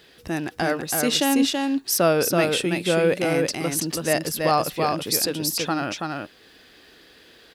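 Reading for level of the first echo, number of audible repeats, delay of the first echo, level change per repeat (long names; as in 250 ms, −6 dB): −3.5 dB, 1, 329 ms, repeats not evenly spaced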